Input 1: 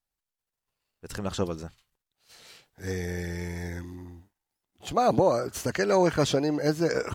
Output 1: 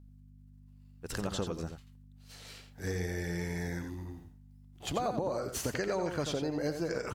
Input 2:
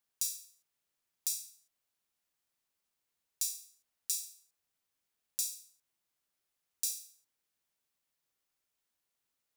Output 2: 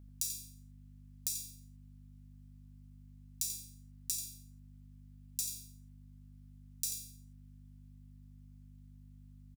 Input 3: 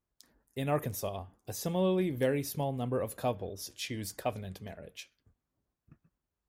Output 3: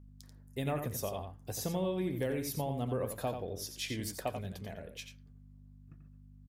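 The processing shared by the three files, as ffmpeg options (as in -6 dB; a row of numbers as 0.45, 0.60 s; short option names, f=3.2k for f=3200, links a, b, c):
-filter_complex "[0:a]acompressor=threshold=-31dB:ratio=6,aeval=exprs='val(0)+0.00224*(sin(2*PI*50*n/s)+sin(2*PI*2*50*n/s)/2+sin(2*PI*3*50*n/s)/3+sin(2*PI*4*50*n/s)/4+sin(2*PI*5*50*n/s)/5)':c=same,asplit=2[a][b];[b]adelay=87.46,volume=-7dB,highshelf=f=4k:g=-1.97[c];[a][c]amix=inputs=2:normalize=0"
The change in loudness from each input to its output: -8.5, -2.5, -3.0 LU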